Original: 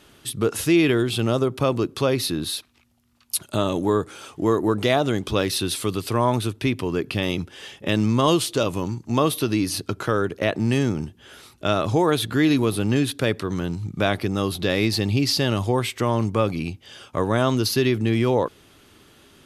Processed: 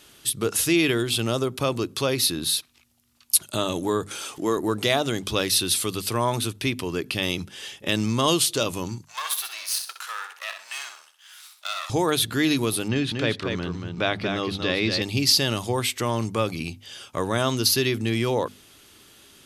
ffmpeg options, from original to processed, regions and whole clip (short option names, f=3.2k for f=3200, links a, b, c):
-filter_complex "[0:a]asettb=1/sr,asplit=3[a][b][c];[a]atrim=end=4.114[d];[b]atrim=start=4.11:end=4.57,asetpts=PTS-STARTPTS,afade=t=in:d=0.004:c=qsin,afade=t=out:st=0.456:d=0.004:c=qsin,highpass=160,acompressor=mode=upward:threshold=-28dB:ratio=2.5:attack=3.2:release=140:knee=2.83:detection=peak[e];[c]atrim=start=4.566[f];[d][e]acrossfade=d=0.004:c1=hsin:c2=qsin[g];[g][f]acrossfade=d=0.004:c1=qsin:c2=hsin,asettb=1/sr,asplit=3[h][i][j];[h]atrim=end=9.054[k];[i]atrim=start=9.05:end=11.9,asetpts=PTS-STARTPTS,afade=t=in:d=0.004:c=qsin,afade=t=out:st=2.846:d=0.004:c=qsin,aeval=exprs='if(lt(val(0),0),0.251*val(0),val(0))':c=same,highpass=f=940:w=0.5412,highpass=f=940:w=1.3066,aecho=1:1:64|128|192|256:0.422|0.135|0.0432|0.0138,atrim=end_sample=125685[l];[j]atrim=start=11.896[m];[k][l]acrossfade=d=0.004:c1=hsin:c2=qsin[n];[n][m]acrossfade=d=0.004:c1=qsin:c2=hsin,asettb=1/sr,asplit=3[o][p][q];[o]atrim=end=12.884[r];[p]atrim=start=12.88:end=15.02,asetpts=PTS-STARTPTS,afade=t=in:d=0.004:c=qsin,afade=t=out:st=2.136:d=0.004:c=qsin,lowpass=3.8k,aecho=1:1:234:0.531,atrim=end_sample=94374[s];[q]atrim=start=15.016[t];[r][s]acrossfade=d=0.004:c1=hsin:c2=qsin[u];[u][t]acrossfade=d=0.004:c1=qsin:c2=hsin,highshelf=f=2.6k:g=11,bandreject=f=50:t=h:w=6,bandreject=f=100:t=h:w=6,bandreject=f=150:t=h:w=6,bandreject=f=200:t=h:w=6,bandreject=f=250:t=h:w=6,volume=-4dB"